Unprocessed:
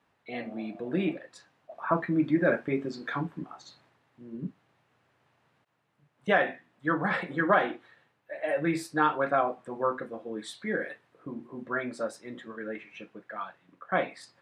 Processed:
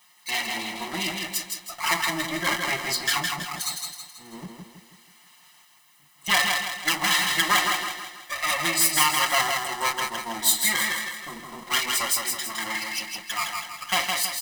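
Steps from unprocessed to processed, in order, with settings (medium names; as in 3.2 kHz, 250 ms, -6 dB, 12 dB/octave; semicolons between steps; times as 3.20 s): comb filter that takes the minimum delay 5.6 ms; treble shelf 4.3 kHz +6.5 dB; comb 1 ms, depth 71%; compression 2:1, threshold -33 dBFS, peak gain reduction 9.5 dB; tilt EQ +4.5 dB/octave; feedback delay 162 ms, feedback 45%, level -4 dB; trim +7.5 dB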